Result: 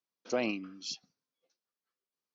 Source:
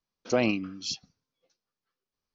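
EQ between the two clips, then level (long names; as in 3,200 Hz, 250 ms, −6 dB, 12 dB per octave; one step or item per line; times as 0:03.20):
high-pass filter 210 Hz 12 dB per octave
−6.0 dB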